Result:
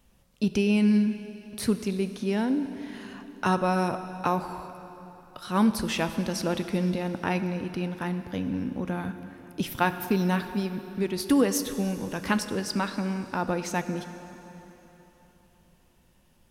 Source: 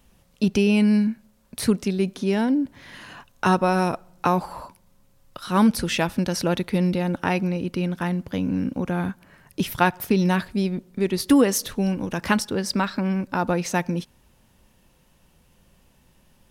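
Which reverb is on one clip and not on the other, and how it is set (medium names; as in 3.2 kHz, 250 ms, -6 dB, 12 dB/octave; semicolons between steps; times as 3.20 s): plate-style reverb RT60 3.7 s, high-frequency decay 0.85×, DRR 9.5 dB; trim -5 dB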